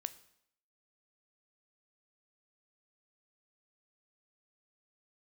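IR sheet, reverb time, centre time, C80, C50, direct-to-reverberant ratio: 0.70 s, 4 ms, 19.5 dB, 17.0 dB, 12.5 dB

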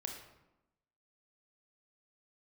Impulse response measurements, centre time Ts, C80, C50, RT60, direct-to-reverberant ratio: 33 ms, 7.5 dB, 5.0 dB, 0.95 s, 2.0 dB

